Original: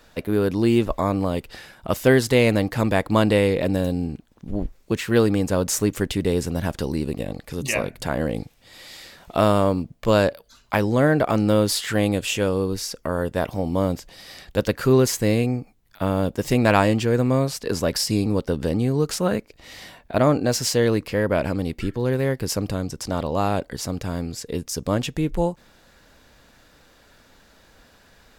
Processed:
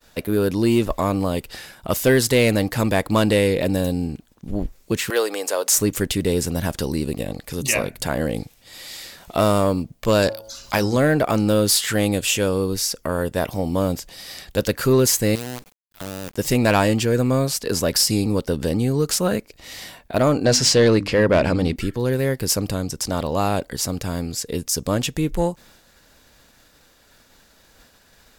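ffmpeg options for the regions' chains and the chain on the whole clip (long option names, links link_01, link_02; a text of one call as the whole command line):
ffmpeg -i in.wav -filter_complex "[0:a]asettb=1/sr,asplit=3[link_01][link_02][link_03];[link_01]atrim=end=5.104[link_04];[link_02]atrim=start=5.1:end=5.76,asetpts=PTS-STARTPTS,afade=type=in:duration=0.004:curve=qsin,afade=type=out:start_time=0.656:duration=0.004:curve=qsin,highpass=frequency=440:width=0.5412,highpass=frequency=440:width=1.3066,acompressor=mode=upward:threshold=-25dB:ratio=2.5:attack=3.2:release=140:knee=2.83:detection=peak[link_05];[link_03]atrim=start=5.756[link_06];[link_04][link_05]acrossfade=duration=0.004:curve1=hsin:curve2=qsin[link_07];[link_07][link_06]acrossfade=duration=0.004:curve1=qsin:curve2=hsin,asettb=1/sr,asplit=3[link_08][link_09][link_10];[link_08]atrim=end=10.224[link_11];[link_09]atrim=start=10.22:end=10.97,asetpts=PTS-STARTPTS,afade=type=in:duration=0.004:curve=qsin,afade=type=out:start_time=0.746:duration=0.004:curve=qsin,equalizer=frequency=5400:width=1.7:gain=9,bandreject=frequency=109.4:width_type=h:width=4,bandreject=frequency=218.8:width_type=h:width=4,bandreject=frequency=328.2:width_type=h:width=4,bandreject=frequency=437.6:width_type=h:width=4,bandreject=frequency=547:width_type=h:width=4,bandreject=frequency=656.4:width_type=h:width=4,bandreject=frequency=765.8:width_type=h:width=4,bandreject=frequency=875.2:width_type=h:width=4,bandreject=frequency=984.6:width_type=h:width=4,bandreject=frequency=1094:width_type=h:width=4,bandreject=frequency=1203.4:width_type=h:width=4,bandreject=frequency=1312.8:width_type=h:width=4,bandreject=frequency=1422.2:width_type=h:width=4,acompressor=mode=upward:threshold=-34dB:ratio=2.5:attack=3.2:release=140:knee=2.83:detection=peak[link_12];[link_10]atrim=start=10.966[link_13];[link_11][link_12]acrossfade=duration=0.004:curve1=hsin:curve2=qsin[link_14];[link_14][link_13]acrossfade=duration=0.004:curve1=qsin:curve2=hsin,asettb=1/sr,asplit=3[link_15][link_16][link_17];[link_15]atrim=end=15.354[link_18];[link_16]atrim=start=15.35:end=16.37,asetpts=PTS-STARTPTS,afade=type=in:duration=0.004:curve=qsin,afade=type=out:start_time=1.016:duration=0.004:curve=qsin,acompressor=threshold=-35dB:ratio=3:attack=3.2:release=140:knee=1:detection=peak,acrusher=bits=6:dc=4:mix=0:aa=0.000001[link_19];[link_17]atrim=start=16.366[link_20];[link_18][link_19]acrossfade=duration=0.004:curve1=hsin:curve2=qsin[link_21];[link_21][link_20]acrossfade=duration=0.004:curve1=qsin:curve2=hsin,asettb=1/sr,asplit=3[link_22][link_23][link_24];[link_22]atrim=end=20.454[link_25];[link_23]atrim=start=20.45:end=21.76,asetpts=PTS-STARTPTS,afade=type=in:duration=0.004:curve=qsin,afade=type=out:start_time=1.306:duration=0.004:curve=qsin,bandreject=frequency=50:width_type=h:width=6,bandreject=frequency=100:width_type=h:width=6,bandreject=frequency=150:width_type=h:width=6,bandreject=frequency=200:width_type=h:width=6,bandreject=frequency=250:width_type=h:width=6,bandreject=frequency=300:width_type=h:width=6,acontrast=29,lowpass=5700[link_26];[link_24]atrim=start=21.756[link_27];[link_25][link_26]acrossfade=duration=0.004:curve1=hsin:curve2=qsin[link_28];[link_28][link_27]acrossfade=duration=0.004:curve1=qsin:curve2=hsin,agate=range=-33dB:threshold=-49dB:ratio=3:detection=peak,highshelf=frequency=4700:gain=9,acontrast=67,volume=-5dB" out.wav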